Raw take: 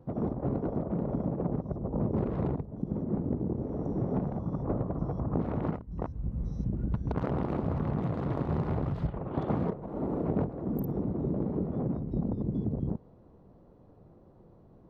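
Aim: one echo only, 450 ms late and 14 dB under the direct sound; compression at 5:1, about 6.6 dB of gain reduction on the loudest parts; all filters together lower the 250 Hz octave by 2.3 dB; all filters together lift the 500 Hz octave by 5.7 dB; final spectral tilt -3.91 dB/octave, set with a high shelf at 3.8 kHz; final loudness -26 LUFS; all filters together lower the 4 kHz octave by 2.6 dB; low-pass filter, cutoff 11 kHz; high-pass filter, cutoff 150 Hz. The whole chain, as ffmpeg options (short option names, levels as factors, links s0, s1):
-af "highpass=150,lowpass=11000,equalizer=f=250:t=o:g=-4.5,equalizer=f=500:t=o:g=8.5,highshelf=f=3800:g=5.5,equalizer=f=4000:t=o:g=-7,acompressor=threshold=0.0251:ratio=5,aecho=1:1:450:0.2,volume=3.55"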